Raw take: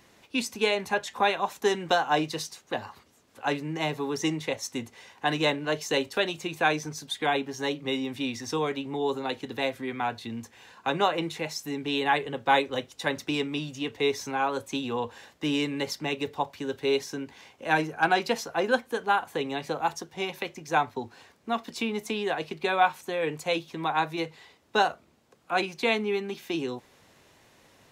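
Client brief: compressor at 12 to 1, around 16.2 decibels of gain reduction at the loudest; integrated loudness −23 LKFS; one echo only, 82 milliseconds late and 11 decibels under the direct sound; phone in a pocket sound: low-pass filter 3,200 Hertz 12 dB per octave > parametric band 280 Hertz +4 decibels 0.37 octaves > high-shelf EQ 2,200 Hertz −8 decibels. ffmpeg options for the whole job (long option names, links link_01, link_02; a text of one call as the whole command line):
ffmpeg -i in.wav -af "acompressor=threshold=-34dB:ratio=12,lowpass=3200,equalizer=frequency=280:width_type=o:width=0.37:gain=4,highshelf=frequency=2200:gain=-8,aecho=1:1:82:0.282,volume=16.5dB" out.wav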